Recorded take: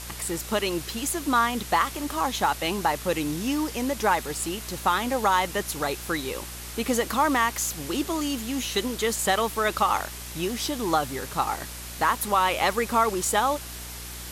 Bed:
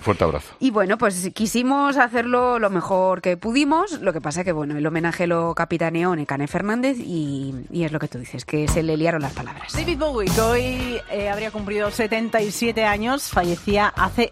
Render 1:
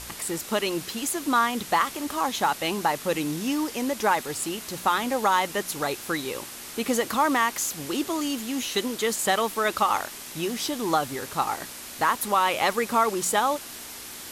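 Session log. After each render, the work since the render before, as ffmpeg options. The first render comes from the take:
-af "bandreject=f=60:t=h:w=4,bandreject=f=120:t=h:w=4,bandreject=f=180:t=h:w=4"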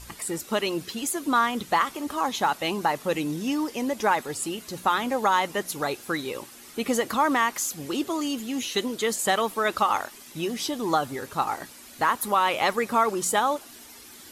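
-af "afftdn=nr=10:nf=-40"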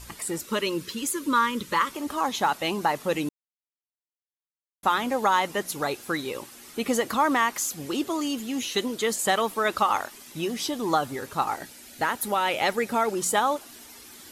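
-filter_complex "[0:a]asettb=1/sr,asplit=3[a][b][c];[a]atrim=end=0.454[d];[b]atrim=start=0.45:end=1.93,asetpts=PTS-STARTPTS,afade=t=in:d=0.004:c=qsin,afade=t=out:st=1.476:d=0.004:c=qsin,asuperstop=centerf=730:order=8:qfactor=2.8[e];[c]atrim=start=1.926[f];[d][e]acrossfade=d=0.004:c1=hsin:c2=qsin[g];[g][f]acrossfade=d=0.004:c1=qsin:c2=hsin,asettb=1/sr,asplit=3[h][i][j];[h]atrim=end=11.564[k];[i]atrim=start=11.56:end=13.18,asetpts=PTS-STARTPTS,afade=t=in:d=0.004:c=qsin,afade=t=out:st=1.616:d=0.004:c=qsin,equalizer=f=1.1k:t=o:w=0.23:g=-13[l];[j]atrim=start=13.176[m];[k][l]acrossfade=d=0.004:c1=hsin:c2=qsin[n];[n][m]acrossfade=d=0.004:c1=qsin:c2=hsin,asplit=3[o][p][q];[o]atrim=end=3.29,asetpts=PTS-STARTPTS,afade=t=out:st=3.286:d=0.004:c=hsin[r];[p]atrim=start=3.29:end=4.83,asetpts=PTS-STARTPTS,volume=0[s];[q]atrim=start=4.83,asetpts=PTS-STARTPTS,afade=t=in:d=0.004:c=hsin[t];[r][s][t]concat=n=3:v=0:a=1"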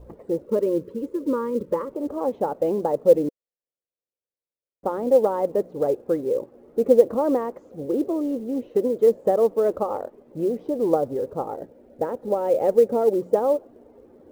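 -af "lowpass=f=510:t=q:w=4.9,acrusher=bits=8:mode=log:mix=0:aa=0.000001"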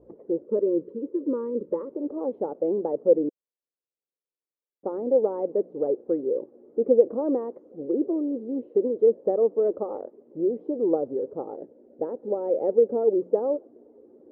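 -af "bandpass=f=360:t=q:w=1.6:csg=0"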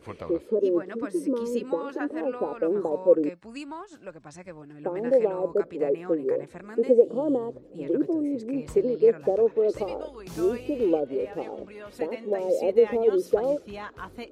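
-filter_complex "[1:a]volume=-20dB[a];[0:a][a]amix=inputs=2:normalize=0"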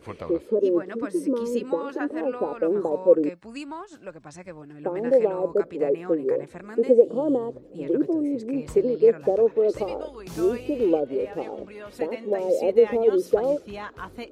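-af "volume=2dB"

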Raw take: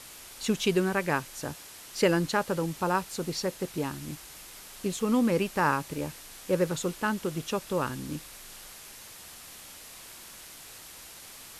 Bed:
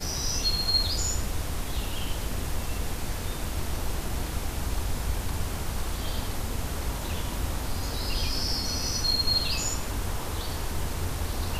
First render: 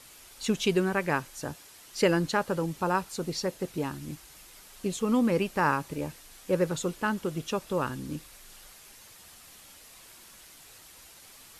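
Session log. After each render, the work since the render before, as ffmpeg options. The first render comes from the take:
-af "afftdn=nr=6:nf=-47"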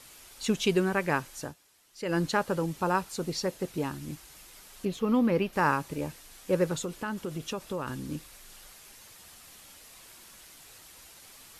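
-filter_complex "[0:a]asettb=1/sr,asplit=3[a][b][c];[a]atrim=end=4.854[d];[b]atrim=start=4.85:end=5.53,asetpts=PTS-STARTPTS,afade=t=in:d=0.004:c=qsin,afade=t=out:st=0.676:d=0.004:c=qsin,equalizer=f=8.1k:w=1.1:g=-14[e];[c]atrim=start=5.526[f];[d][e]acrossfade=d=0.004:c1=hsin:c2=qsin[g];[g][f]acrossfade=d=0.004:c1=qsin:c2=hsin,asettb=1/sr,asplit=3[h][i][j];[h]atrim=end=6.744[k];[i]atrim=start=6.74:end=7.88,asetpts=PTS-STARTPTS,afade=t=in:d=0.004:c=qsin,afade=t=out:st=1.136:d=0.004:c=qsin,acompressor=threshold=-30dB:ratio=4:attack=3.2:release=140:knee=1:detection=peak[l];[j]atrim=start=7.876[m];[k][l]acrossfade=d=0.004:c1=hsin:c2=qsin[n];[n][m]acrossfade=d=0.004:c1=qsin:c2=hsin,asplit=3[o][p][q];[o]atrim=end=1.55,asetpts=PTS-STARTPTS,afade=t=out:st=1.41:d=0.14:silence=0.237137[r];[p]atrim=start=1.55:end=2.05,asetpts=PTS-STARTPTS,volume=-12.5dB[s];[q]atrim=start=2.05,asetpts=PTS-STARTPTS,afade=t=in:d=0.14:silence=0.237137[t];[r][s][t]concat=n=3:v=0:a=1"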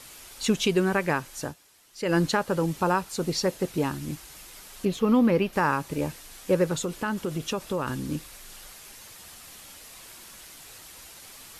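-af "acontrast=31,alimiter=limit=-12.5dB:level=0:latency=1:release=332"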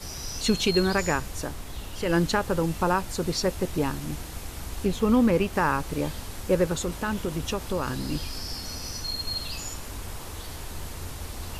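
-filter_complex "[1:a]volume=-6.5dB[a];[0:a][a]amix=inputs=2:normalize=0"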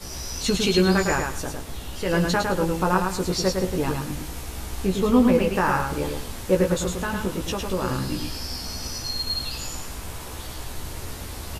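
-filter_complex "[0:a]asplit=2[a][b];[b]adelay=16,volume=-4dB[c];[a][c]amix=inputs=2:normalize=0,aecho=1:1:107|214|321:0.596|0.143|0.0343"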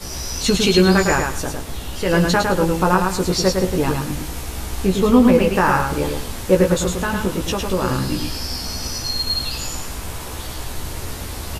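-af "volume=5.5dB,alimiter=limit=-3dB:level=0:latency=1"

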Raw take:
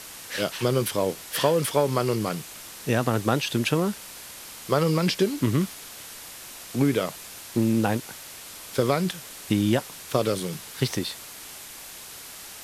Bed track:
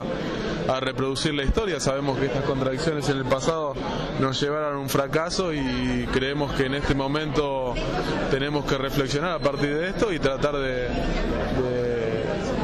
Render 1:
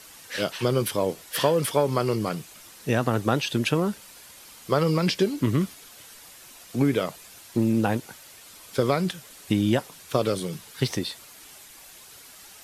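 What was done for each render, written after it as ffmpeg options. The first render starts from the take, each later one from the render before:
-af "afftdn=nr=8:nf=-42"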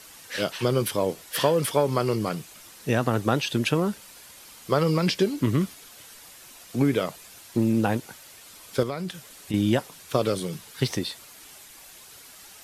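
-filter_complex "[0:a]asettb=1/sr,asplit=3[a][b][c];[a]atrim=end=8.834[d];[b]atrim=start=8.83:end=9.54,asetpts=PTS-STARTPTS,afade=t=in:d=0.004:c=qsin,afade=t=out:st=0.706:d=0.004:c=qsin,acompressor=threshold=-32dB:ratio=2:attack=3.2:release=140:knee=1:detection=peak[e];[c]atrim=start=9.536[f];[d][e]acrossfade=d=0.004:c1=hsin:c2=qsin[g];[g][f]acrossfade=d=0.004:c1=qsin:c2=hsin"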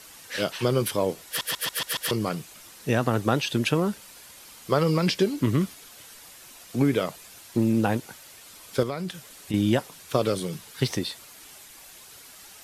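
-filter_complex "[0:a]asplit=7[a][b][c][d][e][f][g];[a]atrim=end=1.412[h];[b]atrim=start=1.268:end=1.412[i];[c]atrim=start=1.268:end=1.412[j];[d]atrim=start=1.268:end=1.412[k];[e]atrim=start=1.268:end=1.412[l];[f]atrim=start=1.268:end=1.412[m];[g]atrim=start=2.108[n];[h][i]acrossfade=d=0.004:c1=hsin:c2=hsin[o];[o][j]acrossfade=d=0.004:c1=hsin:c2=hsin[p];[p][k]acrossfade=d=0.004:c1=hsin:c2=hsin[q];[q][l]acrossfade=d=0.004:c1=hsin:c2=hsin[r];[r][m]acrossfade=d=0.004:c1=hsin:c2=hsin[s];[s][n]acrossfade=d=0.004:c1=hsin:c2=hsin"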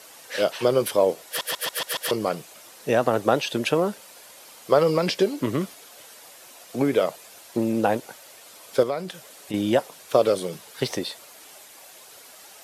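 -af "highpass=f=270:p=1,equalizer=f=590:w=1.2:g=8.5"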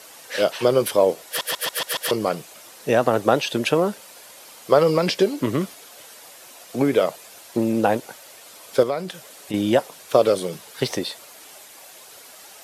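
-af "volume=2.5dB"

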